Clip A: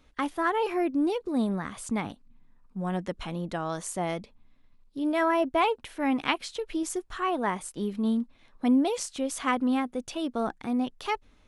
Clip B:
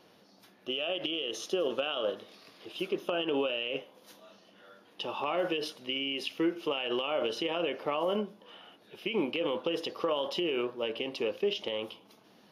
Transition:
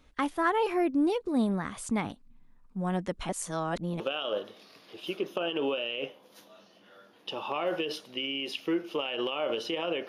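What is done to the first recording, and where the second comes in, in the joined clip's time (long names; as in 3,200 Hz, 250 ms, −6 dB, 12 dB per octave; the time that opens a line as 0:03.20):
clip A
0:03.29–0:04.00: reverse
0:04.00: continue with clip B from 0:01.72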